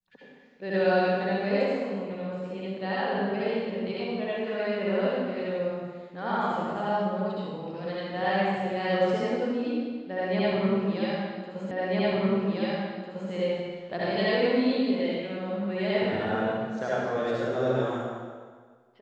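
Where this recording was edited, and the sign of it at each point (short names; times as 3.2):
11.71 repeat of the last 1.6 s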